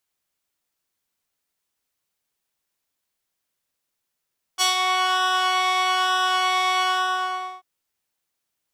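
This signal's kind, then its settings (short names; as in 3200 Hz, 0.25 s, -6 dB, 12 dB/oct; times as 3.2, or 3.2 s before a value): synth patch with pulse-width modulation F#5, oscillator 2 square, interval +7 st, detune 16 cents, oscillator 2 level -1.5 dB, sub -6.5 dB, noise -16.5 dB, filter bandpass, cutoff 1100 Hz, Q 0.91, filter envelope 2.5 oct, attack 35 ms, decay 0.13 s, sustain -7 dB, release 0.80 s, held 2.24 s, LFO 1.1 Hz, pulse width 40%, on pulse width 7%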